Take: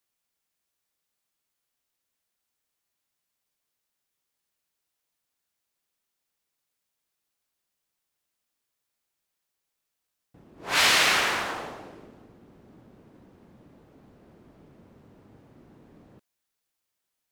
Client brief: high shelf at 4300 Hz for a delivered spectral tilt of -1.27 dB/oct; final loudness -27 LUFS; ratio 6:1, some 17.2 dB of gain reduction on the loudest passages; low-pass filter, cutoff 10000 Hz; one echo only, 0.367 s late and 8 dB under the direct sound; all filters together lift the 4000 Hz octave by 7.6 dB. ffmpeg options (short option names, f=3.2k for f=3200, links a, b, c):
-af "lowpass=10k,equalizer=f=4k:t=o:g=7.5,highshelf=f=4.3k:g=4,acompressor=threshold=-31dB:ratio=6,aecho=1:1:367:0.398,volume=5.5dB"